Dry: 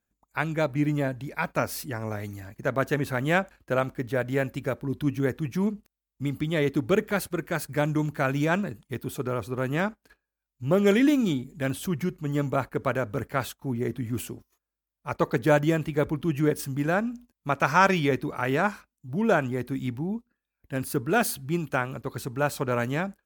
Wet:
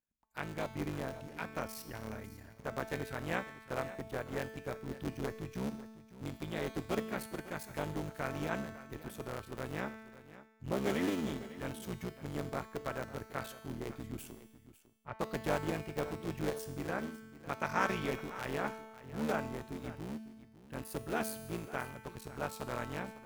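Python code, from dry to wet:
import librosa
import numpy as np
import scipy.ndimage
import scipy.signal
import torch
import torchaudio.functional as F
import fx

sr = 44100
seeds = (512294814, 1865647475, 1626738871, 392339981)

y = fx.cycle_switch(x, sr, every=3, mode='muted')
y = fx.lowpass(y, sr, hz=1900.0, slope=12, at=(14.32, 15.19))
y = fx.comb_fb(y, sr, f0_hz=220.0, decay_s=1.3, harmonics='all', damping=0.0, mix_pct=80)
y = y + 10.0 ** (-16.0 / 20.0) * np.pad(y, (int(551 * sr / 1000.0), 0))[:len(y)]
y = y * 10.0 ** (2.0 / 20.0)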